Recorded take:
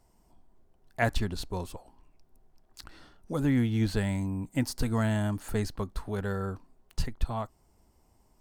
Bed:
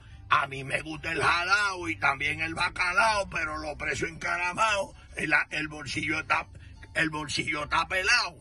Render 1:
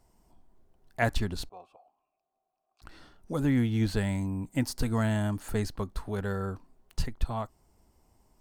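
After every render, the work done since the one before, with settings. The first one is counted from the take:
0:01.49–0:02.82: formant filter a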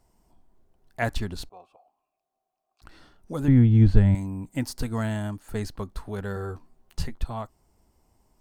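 0:03.48–0:04.15: RIAA equalisation playback
0:04.86–0:05.61: expander for the loud parts, over −42 dBFS
0:06.35–0:07.18: double-tracking delay 13 ms −5 dB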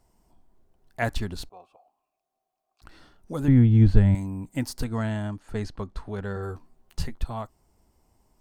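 0:04.84–0:06.43: high-frequency loss of the air 64 metres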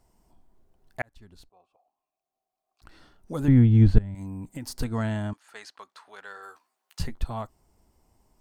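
0:01.02–0:03.46: fade in
0:03.98–0:04.74: downward compressor 12 to 1, threshold −31 dBFS
0:05.33–0:07.00: high-pass filter 1,100 Hz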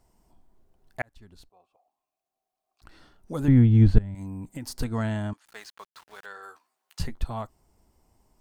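0:05.45–0:06.26: centre clipping without the shift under −50 dBFS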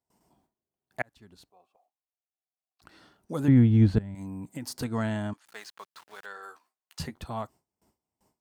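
high-pass filter 120 Hz 12 dB per octave
noise gate with hold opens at −58 dBFS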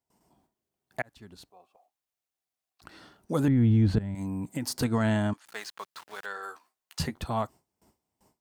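automatic gain control gain up to 5 dB
brickwall limiter −16 dBFS, peak gain reduction 10.5 dB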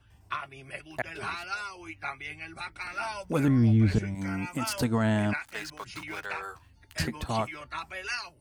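mix in bed −11 dB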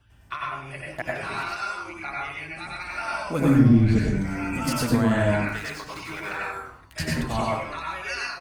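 echo with shifted repeats 100 ms, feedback 43%, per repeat −130 Hz, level −15.5 dB
dense smooth reverb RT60 0.52 s, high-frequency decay 0.55×, pre-delay 80 ms, DRR −3.5 dB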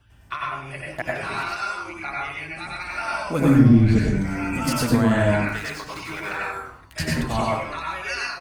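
level +2.5 dB

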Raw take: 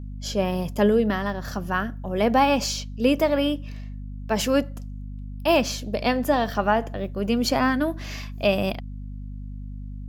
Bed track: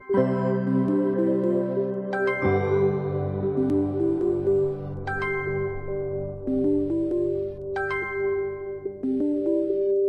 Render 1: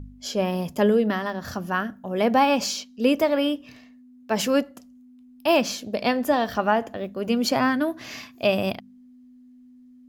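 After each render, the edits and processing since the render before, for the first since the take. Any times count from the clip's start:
hum removal 50 Hz, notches 4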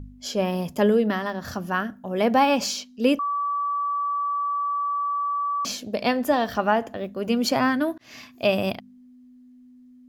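0:03.19–0:05.65: beep over 1,150 Hz −22.5 dBFS
0:07.98–0:08.48: fade in equal-power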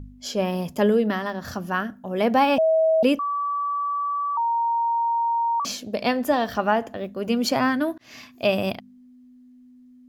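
0:02.58–0:03.03: beep over 642 Hz −15.5 dBFS
0:04.37–0:05.60: beep over 930 Hz −19.5 dBFS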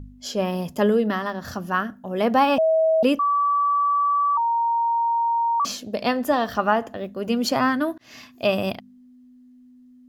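notch filter 2,300 Hz, Q 17
dynamic equaliser 1,200 Hz, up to +6 dB, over −39 dBFS, Q 4.1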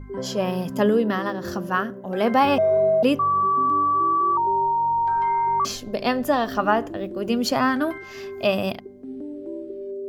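mix in bed track −10 dB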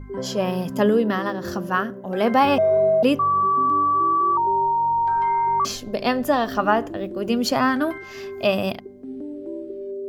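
level +1 dB

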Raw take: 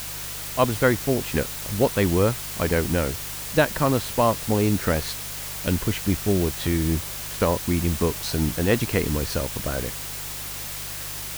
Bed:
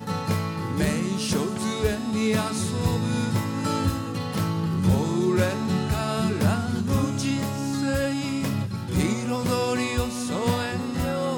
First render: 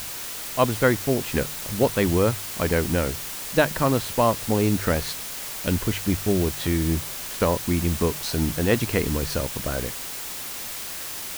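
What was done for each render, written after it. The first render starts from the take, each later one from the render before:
hum removal 50 Hz, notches 3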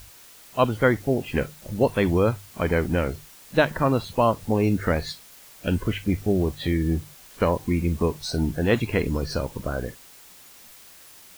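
noise reduction from a noise print 15 dB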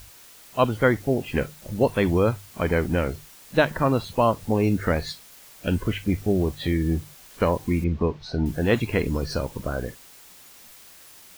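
0:07.84–0:08.46: high-frequency loss of the air 220 metres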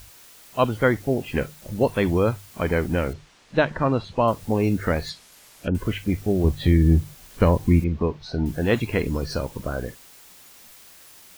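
0:03.13–0:04.28: high-frequency loss of the air 110 metres
0:05.09–0:05.75: treble cut that deepens with the level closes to 600 Hz, closed at −20.5 dBFS
0:06.44–0:07.80: low-shelf EQ 210 Hz +11 dB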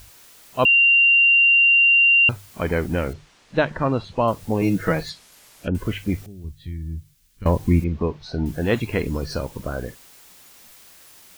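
0:00.65–0:02.29: beep over 2,770 Hz −11.5 dBFS
0:04.61–0:05.03: comb filter 6.2 ms, depth 81%
0:06.26–0:07.46: guitar amp tone stack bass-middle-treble 6-0-2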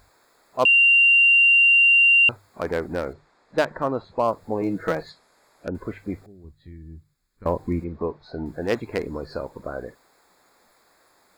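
adaptive Wiener filter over 15 samples
bass and treble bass −12 dB, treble +5 dB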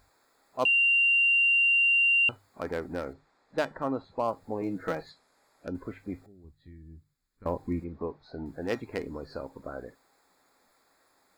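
tuned comb filter 270 Hz, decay 0.19 s, harmonics odd, mix 60%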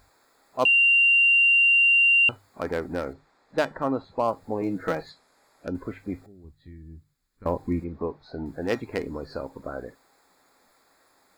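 level +4.5 dB

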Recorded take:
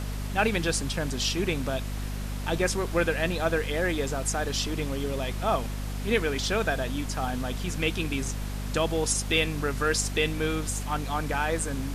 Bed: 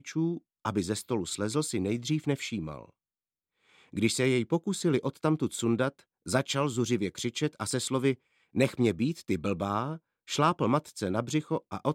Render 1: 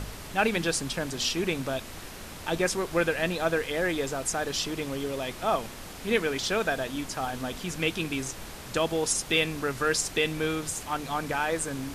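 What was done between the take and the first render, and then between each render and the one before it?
hum removal 50 Hz, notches 5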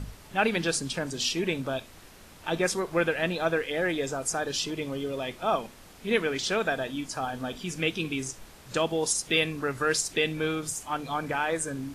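noise reduction from a noise print 9 dB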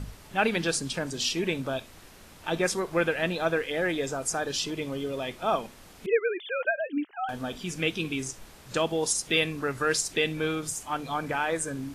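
0:06.06–0:07.29: three sine waves on the formant tracks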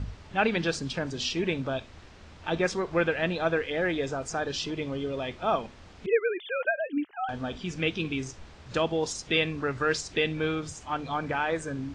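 Bessel low-pass filter 4,600 Hz, order 6
parametric band 75 Hz +9 dB 0.9 octaves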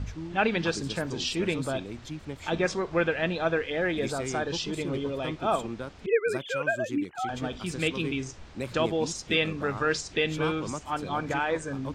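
mix in bed −9.5 dB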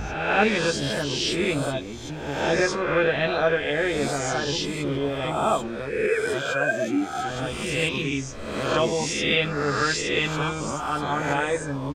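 peak hold with a rise ahead of every peak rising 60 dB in 1.08 s
double-tracking delay 14 ms −4 dB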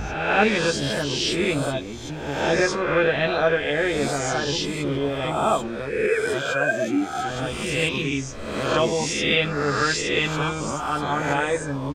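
level +1.5 dB

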